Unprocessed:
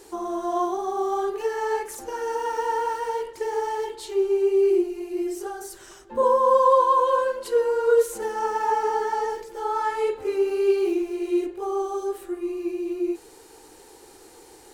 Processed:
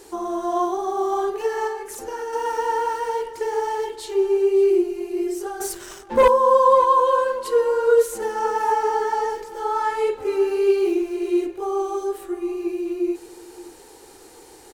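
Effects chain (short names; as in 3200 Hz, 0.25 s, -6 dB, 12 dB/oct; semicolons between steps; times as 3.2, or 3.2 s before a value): 1.67–2.33 compressor 10:1, threshold -29 dBFS, peak gain reduction 9.5 dB; 5.6–6.28 sample leveller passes 2; echo 0.569 s -18 dB; gain +2.5 dB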